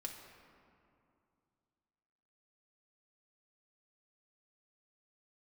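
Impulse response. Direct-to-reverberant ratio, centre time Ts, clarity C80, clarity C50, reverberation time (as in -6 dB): 0.0 dB, 56 ms, 6.0 dB, 4.5 dB, 2.5 s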